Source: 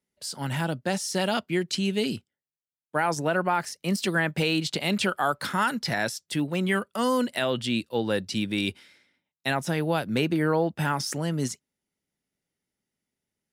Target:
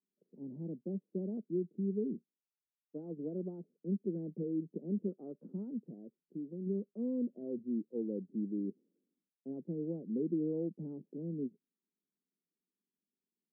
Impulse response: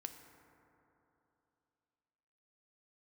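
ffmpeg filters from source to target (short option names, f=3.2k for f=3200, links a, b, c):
-filter_complex "[0:a]asplit=3[a][b][c];[a]afade=t=out:st=5.79:d=0.02[d];[b]acompressor=threshold=-29dB:ratio=6,afade=t=in:st=5.79:d=0.02,afade=t=out:st=6.65:d=0.02[e];[c]afade=t=in:st=6.65:d=0.02[f];[d][e][f]amix=inputs=3:normalize=0,asuperpass=centerf=280:order=8:qfactor=1,volume=-7.5dB"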